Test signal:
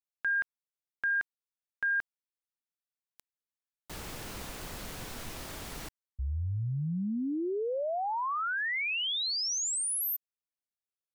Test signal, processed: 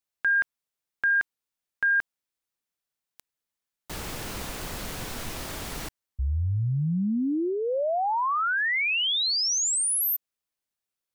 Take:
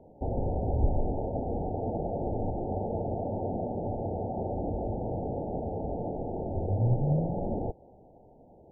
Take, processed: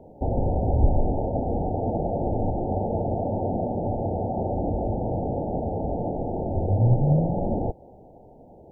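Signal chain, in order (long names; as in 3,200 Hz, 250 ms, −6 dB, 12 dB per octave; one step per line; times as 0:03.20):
dynamic equaliser 420 Hz, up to −3 dB, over −46 dBFS, Q 4
level +6.5 dB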